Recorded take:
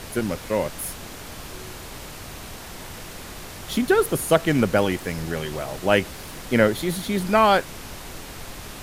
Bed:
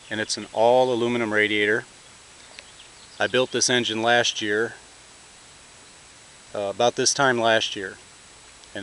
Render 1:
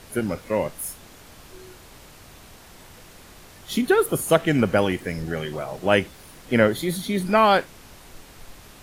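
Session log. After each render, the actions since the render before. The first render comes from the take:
noise reduction from a noise print 9 dB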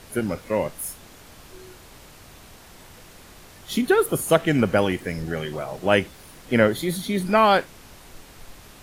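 no processing that can be heard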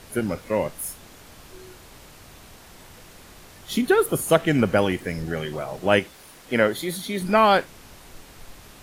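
0:05.99–0:07.22: low-shelf EQ 220 Hz −9.5 dB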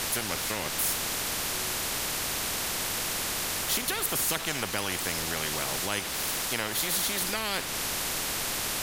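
downward compressor 2 to 1, threshold −28 dBFS, peak gain reduction 9.5 dB
every bin compressed towards the loudest bin 4 to 1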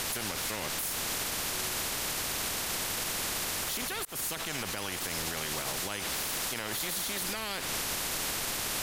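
volume swells 282 ms
brickwall limiter −23.5 dBFS, peak gain reduction 11 dB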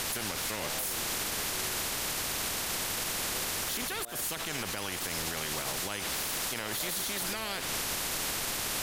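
mix in bed −28.5 dB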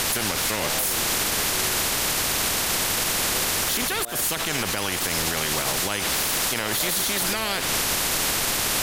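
level +9.5 dB

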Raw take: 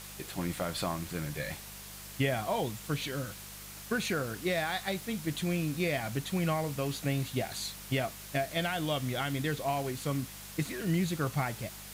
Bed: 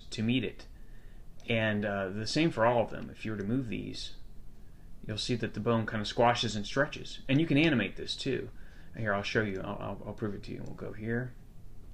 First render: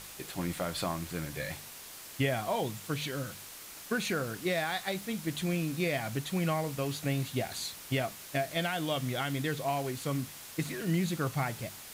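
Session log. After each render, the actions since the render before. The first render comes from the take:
hum removal 50 Hz, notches 4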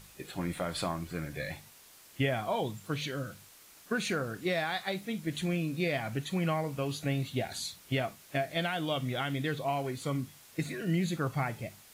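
noise reduction from a noise print 9 dB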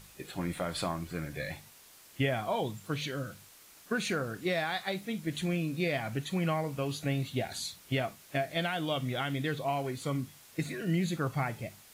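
no processing that can be heard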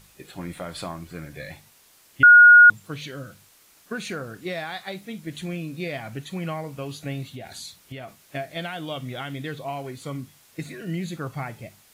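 0:02.23–0:02.70: beep over 1,440 Hz −6.5 dBFS
0:07.29–0:08.22: downward compressor, threshold −33 dBFS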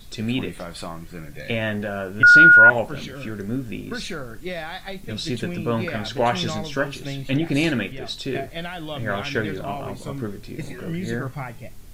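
mix in bed +4.5 dB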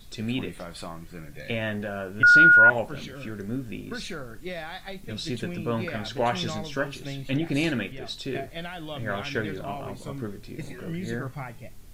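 level −4.5 dB

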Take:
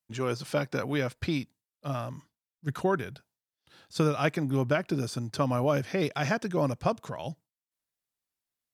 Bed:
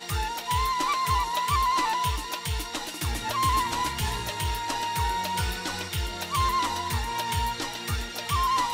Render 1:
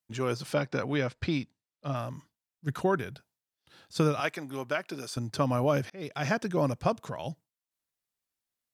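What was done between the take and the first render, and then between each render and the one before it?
0:00.54–0:01.96: low-pass filter 6,100 Hz
0:04.20–0:05.17: high-pass filter 800 Hz 6 dB per octave
0:05.90–0:06.32: fade in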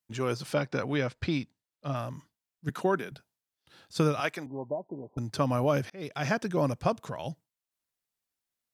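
0:02.69–0:03.12: high-pass filter 170 Hz 24 dB per octave
0:04.46–0:05.18: Chebyshev low-pass filter 990 Hz, order 8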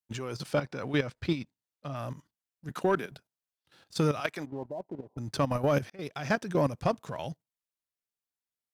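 leveller curve on the samples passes 1
output level in coarse steps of 12 dB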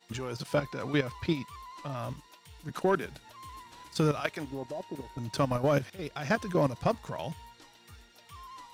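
mix in bed −23 dB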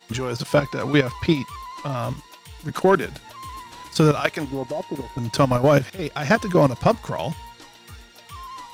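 level +10 dB

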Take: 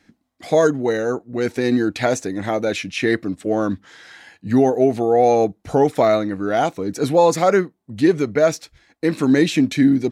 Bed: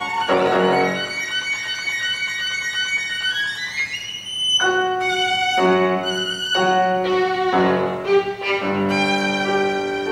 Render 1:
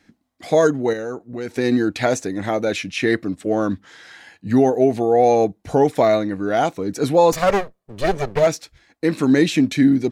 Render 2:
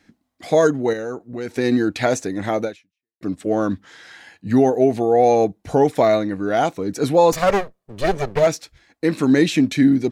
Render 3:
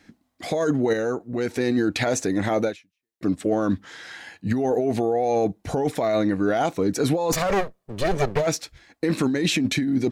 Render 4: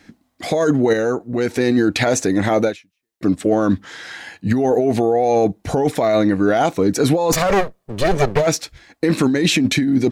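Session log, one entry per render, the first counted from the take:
0:00.93–0:01.55: downward compressor 2 to 1, threshold −29 dBFS; 0:04.76–0:06.52: notch filter 1,300 Hz; 0:07.32–0:08.47: lower of the sound and its delayed copy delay 1.7 ms
0:02.64–0:03.21: fade out exponential
compressor whose output falls as the input rises −19 dBFS, ratio −1; brickwall limiter −12.5 dBFS, peak gain reduction 7 dB
level +6 dB

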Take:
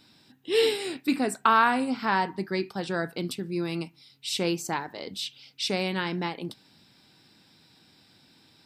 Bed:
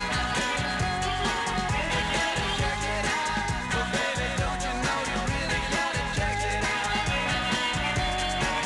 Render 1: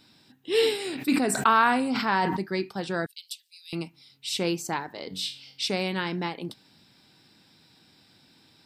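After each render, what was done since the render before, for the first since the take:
0:00.77–0:02.40: level that may fall only so fast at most 34 dB per second
0:03.06–0:03.73: Butterworth high-pass 3,000 Hz
0:05.08–0:05.66: flutter between parallel walls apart 3.7 metres, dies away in 0.32 s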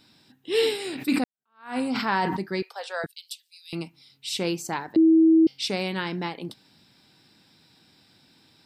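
0:01.24–0:01.78: fade in exponential
0:02.62–0:03.04: Butterworth high-pass 460 Hz 72 dB per octave
0:04.96–0:05.47: beep over 323 Hz −13 dBFS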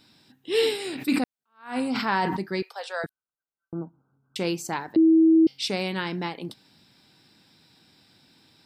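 0:03.09–0:04.36: linear-phase brick-wall low-pass 1,600 Hz
0:04.95–0:05.36: high-frequency loss of the air 150 metres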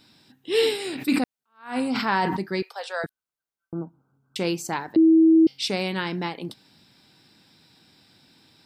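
level +1.5 dB

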